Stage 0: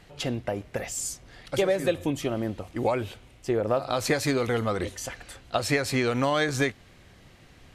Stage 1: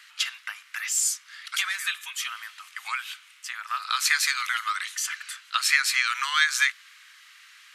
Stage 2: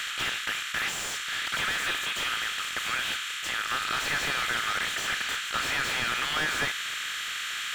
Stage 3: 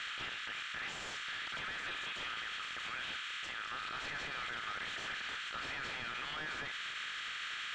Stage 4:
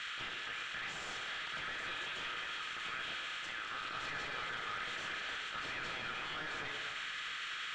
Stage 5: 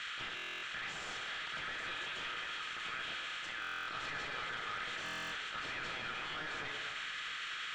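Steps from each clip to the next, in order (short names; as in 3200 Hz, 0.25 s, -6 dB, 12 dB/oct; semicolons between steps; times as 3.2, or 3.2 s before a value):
steep high-pass 1200 Hz 48 dB/oct; gain +8 dB
per-bin compression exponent 0.4; thirty-one-band EQ 1000 Hz -11 dB, 2000 Hz -5 dB, 3150 Hz +5 dB, 5000 Hz -8 dB, 10000 Hz -8 dB; slew limiter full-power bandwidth 190 Hz; gain -4 dB
limiter -27 dBFS, peak gain reduction 11.5 dB; air absorption 130 m; gain -3.5 dB
on a send: delay with a stepping band-pass 0.118 s, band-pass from 420 Hz, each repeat 0.7 oct, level -1 dB; on the sum: shoebox room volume 420 m³, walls mixed, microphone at 0.58 m; gain -1.5 dB
stuck buffer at 0.35/3.6/5.04, samples 1024, times 11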